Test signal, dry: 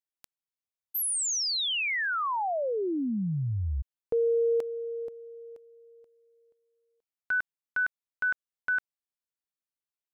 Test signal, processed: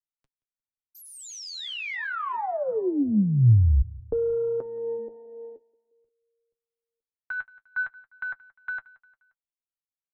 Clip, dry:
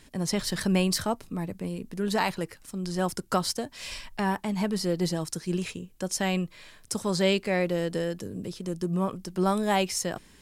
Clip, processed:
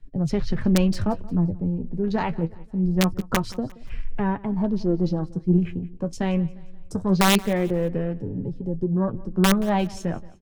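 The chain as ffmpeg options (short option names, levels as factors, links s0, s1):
-filter_complex "[0:a]afwtdn=0.0112,aemphasis=mode=reproduction:type=riaa,flanger=delay=7.1:depth=5.6:regen=42:speed=0.24:shape=sinusoidal,acrossover=split=130|4000[s0][s1][s2];[s1]aeval=exprs='(mod(5.31*val(0)+1,2)-1)/5.31':c=same[s3];[s0][s3][s2]amix=inputs=3:normalize=0,aeval=exprs='0.266*(cos(1*acos(clip(val(0)/0.266,-1,1)))-cos(1*PI/2))+0.00668*(cos(3*acos(clip(val(0)/0.266,-1,1)))-cos(3*PI/2))':c=same,asplit=2[s4][s5];[s5]aecho=0:1:176|352|528:0.0841|0.0387|0.0178[s6];[s4][s6]amix=inputs=2:normalize=0,volume=1.58"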